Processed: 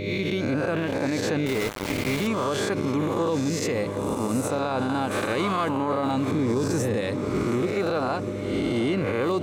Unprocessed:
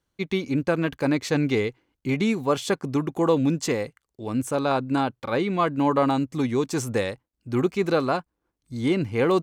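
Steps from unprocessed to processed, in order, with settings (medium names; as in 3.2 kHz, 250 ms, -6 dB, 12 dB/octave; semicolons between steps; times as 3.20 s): reverse spectral sustain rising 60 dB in 1.01 s; recorder AGC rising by 27 dB/s; mains buzz 100 Hz, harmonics 6, -32 dBFS -2 dB/octave; 6.32–7.01 s: bass shelf 390 Hz +8.5 dB; echo that smears into a reverb 754 ms, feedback 41%, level -14.5 dB; 1.46–2.27 s: small samples zeroed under -23.5 dBFS; peak limiter -17 dBFS, peak gain reduction 11 dB; 5.11–5.69 s: treble shelf 3.6 kHz +10 dB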